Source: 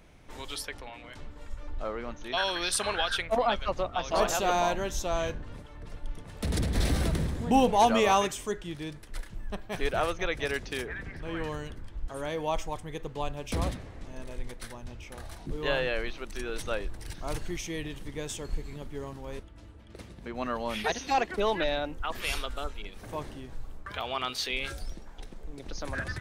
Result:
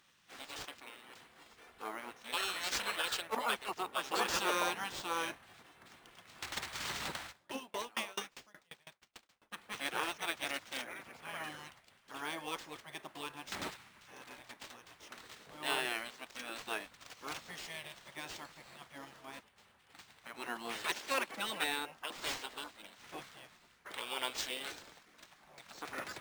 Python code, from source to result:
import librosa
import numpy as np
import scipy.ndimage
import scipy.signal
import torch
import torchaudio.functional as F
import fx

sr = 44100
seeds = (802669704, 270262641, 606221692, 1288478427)

y = scipy.signal.sosfilt(scipy.signal.butter(2, 450.0, 'highpass', fs=sr, output='sos'), x)
y = fx.spec_gate(y, sr, threshold_db=-10, keep='weak')
y = fx.sample_hold(y, sr, seeds[0], rate_hz=12000.0, jitter_pct=0)
y = fx.high_shelf(y, sr, hz=6200.0, db=-5.5)
y = fx.tremolo_decay(y, sr, direction='decaying', hz=fx.line((7.31, 3.6), (9.51, 8.4)), depth_db=33, at=(7.31, 9.51), fade=0.02)
y = F.gain(torch.from_numpy(y), 1.0).numpy()